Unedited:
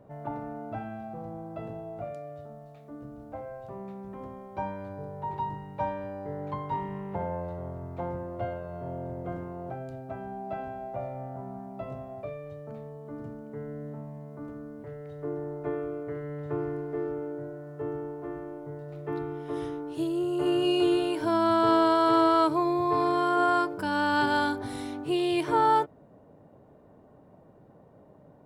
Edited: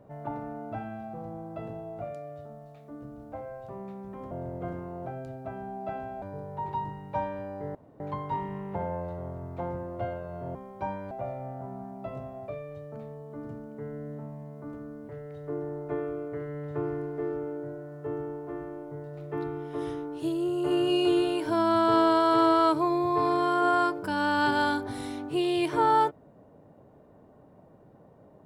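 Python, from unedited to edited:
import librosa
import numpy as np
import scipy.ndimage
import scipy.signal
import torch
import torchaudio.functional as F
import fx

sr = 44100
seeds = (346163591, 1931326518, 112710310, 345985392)

y = fx.edit(x, sr, fx.swap(start_s=4.31, length_s=0.56, other_s=8.95, other_length_s=1.91),
    fx.insert_room_tone(at_s=6.4, length_s=0.25), tone=tone)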